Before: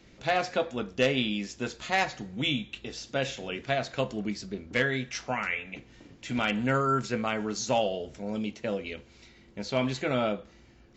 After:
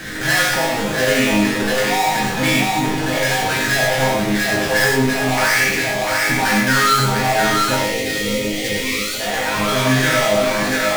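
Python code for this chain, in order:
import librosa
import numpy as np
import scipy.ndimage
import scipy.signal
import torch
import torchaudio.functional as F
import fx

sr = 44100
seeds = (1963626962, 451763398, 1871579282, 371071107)

p1 = fx.spec_paint(x, sr, seeds[0], shape='rise', start_s=8.2, length_s=1.8, low_hz=430.0, high_hz=5000.0, level_db=-40.0)
p2 = fx.filter_lfo_lowpass(p1, sr, shape='square', hz=0.93, low_hz=830.0, high_hz=1700.0, q=7.4)
p3 = p2 + fx.echo_split(p2, sr, split_hz=410.0, low_ms=266, high_ms=694, feedback_pct=52, wet_db=-10.0, dry=0)
p4 = fx.power_curve(p3, sr, exponent=0.35)
p5 = fx.level_steps(p4, sr, step_db=20)
p6 = p4 + F.gain(torch.from_numpy(p5), -0.5).numpy()
p7 = fx.low_shelf(p6, sr, hz=360.0, db=5.5)
p8 = fx.spec_box(p7, sr, start_s=7.75, length_s=1.45, low_hz=580.0, high_hz=1800.0, gain_db=-17)
p9 = fx.high_shelf(p8, sr, hz=2000.0, db=10.0)
p10 = fx.resonator_bank(p9, sr, root=44, chord='major', decay_s=0.53)
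p11 = fx.rev_gated(p10, sr, seeds[1], gate_ms=120, shape='rising', drr_db=1.0)
y = F.gain(torch.from_numpy(p11), 3.0).numpy()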